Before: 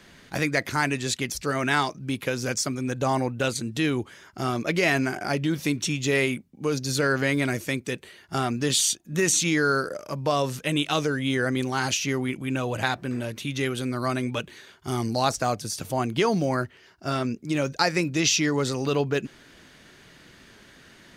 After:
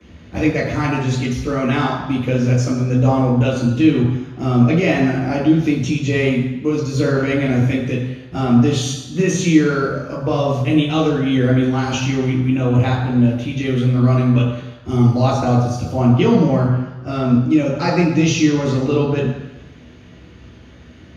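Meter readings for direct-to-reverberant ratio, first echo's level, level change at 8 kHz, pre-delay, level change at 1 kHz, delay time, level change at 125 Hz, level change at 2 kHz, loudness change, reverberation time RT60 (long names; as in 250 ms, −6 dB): −13.5 dB, no echo audible, −4.0 dB, 3 ms, +4.0 dB, no echo audible, +14.0 dB, +1.0 dB, +8.5 dB, 1.0 s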